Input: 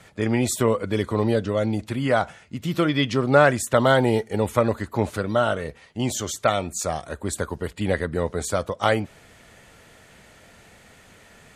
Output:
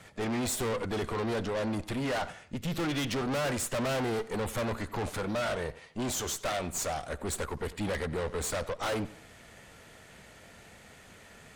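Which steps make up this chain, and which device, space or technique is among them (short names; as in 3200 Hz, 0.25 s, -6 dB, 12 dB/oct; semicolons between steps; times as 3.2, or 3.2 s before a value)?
rockabilly slapback (tube stage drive 31 dB, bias 0.75; tape echo 91 ms, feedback 34%, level -16 dB, low-pass 5600 Hz); gain +2 dB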